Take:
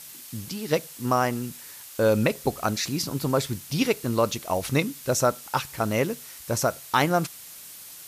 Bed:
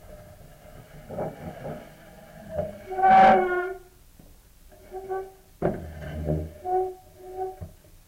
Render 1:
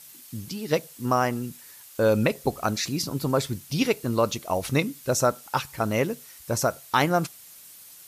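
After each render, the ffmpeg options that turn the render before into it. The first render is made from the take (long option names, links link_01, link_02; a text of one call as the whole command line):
ffmpeg -i in.wav -af "afftdn=noise_reduction=6:noise_floor=-44" out.wav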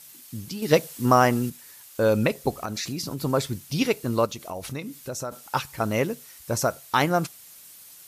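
ffmpeg -i in.wav -filter_complex "[0:a]asettb=1/sr,asplit=3[link_01][link_02][link_03];[link_01]atrim=end=0.624[link_04];[link_02]atrim=start=0.62:end=1.5,asetpts=PTS-STARTPTS,afade=type=in:duration=0.004:curve=qsin,afade=type=out:start_time=0.876:duration=0.004:curve=qsin,acontrast=41[link_05];[link_03]atrim=start=1.496[link_06];[link_04][link_05]acrossfade=duration=0.004:curve1=hsin:curve2=qsin[link_07];[link_07][link_06]acrossfade=duration=0.004:curve1=qsin:curve2=hsin,asettb=1/sr,asplit=3[link_08][link_09][link_10];[link_08]atrim=end=2.624[link_11];[link_09]atrim=start=2.62:end=3.19,asetpts=PTS-STARTPTS,afade=type=in:duration=0.004:curve=qsin,afade=type=out:start_time=0.566:duration=0.004:curve=qsin,acompressor=threshold=-26dB:ratio=6:attack=3.2:release=140:knee=1:detection=peak[link_12];[link_10]atrim=start=3.186[link_13];[link_11][link_12]acrossfade=duration=0.004:curve1=hsin:curve2=qsin[link_14];[link_14][link_13]acrossfade=duration=0.004:curve1=qsin:curve2=hsin,asplit=3[link_15][link_16][link_17];[link_15]afade=type=out:start_time=4.25:duration=0.02[link_18];[link_16]acompressor=threshold=-33dB:ratio=2.5:attack=3.2:release=140:knee=1:detection=peak,afade=type=in:start_time=4.25:duration=0.02,afade=type=out:start_time=5.31:duration=0.02[link_19];[link_17]afade=type=in:start_time=5.31:duration=0.02[link_20];[link_18][link_19][link_20]amix=inputs=3:normalize=0" out.wav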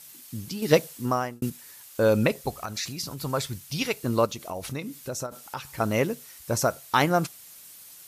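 ffmpeg -i in.wav -filter_complex "[0:a]asettb=1/sr,asplit=3[link_01][link_02][link_03];[link_01]atrim=end=2.414[link_04];[link_02]atrim=start=2.41:end=4.03,asetpts=PTS-STARTPTS,afade=type=in:duration=0.004:curve=qsin,afade=type=out:start_time=1.616:duration=0.004:curve=qsin,equalizer=frequency=300:width_type=o:width=2.1:gain=-8[link_05];[link_03]atrim=start=4.026[link_06];[link_04][link_05]acrossfade=duration=0.004:curve1=hsin:curve2=qsin[link_07];[link_07][link_06]acrossfade=duration=0.004:curve1=qsin:curve2=hsin,asettb=1/sr,asplit=3[link_08][link_09][link_10];[link_08]atrim=end=5.264[link_11];[link_09]atrim=start=5.26:end=5.66,asetpts=PTS-STARTPTS,afade=type=in:duration=0.004:curve=qsin,afade=type=out:start_time=0.396:duration=0.004:curve=qsin,acompressor=threshold=-37dB:ratio=2:attack=3.2:release=140:knee=1:detection=peak[link_12];[link_10]atrim=start=5.656[link_13];[link_11][link_12]acrossfade=duration=0.004:curve1=hsin:curve2=qsin[link_14];[link_14][link_13]acrossfade=duration=0.004:curve1=qsin:curve2=hsin,asplit=2[link_15][link_16];[link_15]atrim=end=1.42,asetpts=PTS-STARTPTS,afade=type=out:start_time=0.72:duration=0.7[link_17];[link_16]atrim=start=1.42,asetpts=PTS-STARTPTS,afade=type=in:duration=0.004:curve=hsin[link_18];[link_17][link_18]concat=n=2:v=0:a=1" out.wav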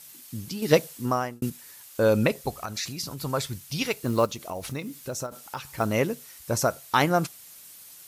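ffmpeg -i in.wav -filter_complex "[0:a]asettb=1/sr,asplit=3[link_01][link_02][link_03];[link_01]atrim=end=3.834[link_04];[link_02]atrim=start=3.83:end=5.86,asetpts=PTS-STARTPTS,afade=type=in:duration=0.004:curve=qsin,afade=type=out:start_time=2.026:duration=0.004:curve=qsin,acrusher=bits=7:mode=log:mix=0:aa=0.000001[link_05];[link_03]atrim=start=5.856[link_06];[link_04][link_05]acrossfade=duration=0.004:curve1=hsin:curve2=qsin[link_07];[link_07][link_06]acrossfade=duration=0.004:curve1=qsin:curve2=hsin" out.wav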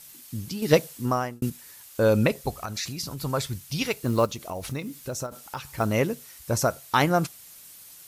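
ffmpeg -i in.wav -af "lowshelf=frequency=85:gain=8" out.wav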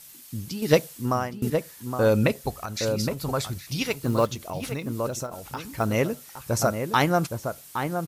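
ffmpeg -i in.wav -filter_complex "[0:a]asplit=2[link_01][link_02];[link_02]adelay=816.3,volume=-6dB,highshelf=frequency=4000:gain=-18.4[link_03];[link_01][link_03]amix=inputs=2:normalize=0" out.wav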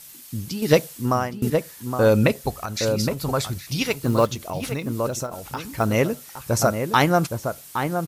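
ffmpeg -i in.wav -af "volume=3.5dB,alimiter=limit=-3dB:level=0:latency=1" out.wav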